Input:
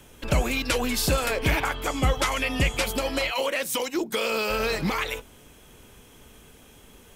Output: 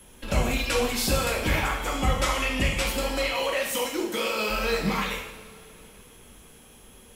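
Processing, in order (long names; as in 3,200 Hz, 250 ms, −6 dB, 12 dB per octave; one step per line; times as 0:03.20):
steady tone 11,000 Hz −47 dBFS
coupled-rooms reverb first 0.78 s, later 3.3 s, from −19 dB, DRR −2 dB
level −4.5 dB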